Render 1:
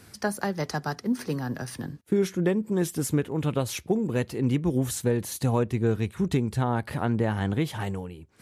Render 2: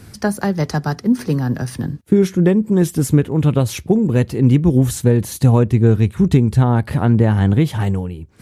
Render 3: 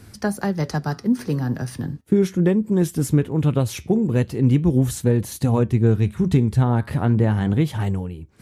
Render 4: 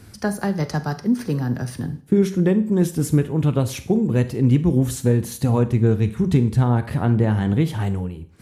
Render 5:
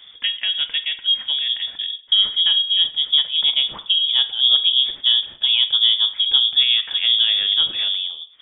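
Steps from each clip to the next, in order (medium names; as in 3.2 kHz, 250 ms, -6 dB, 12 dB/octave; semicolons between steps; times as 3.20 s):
bass shelf 260 Hz +10.5 dB; trim +5.5 dB
flange 0.38 Hz, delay 2.8 ms, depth 6.5 ms, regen -84%
Schroeder reverb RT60 0.47 s, combs from 33 ms, DRR 12.5 dB
frequency inversion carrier 3.5 kHz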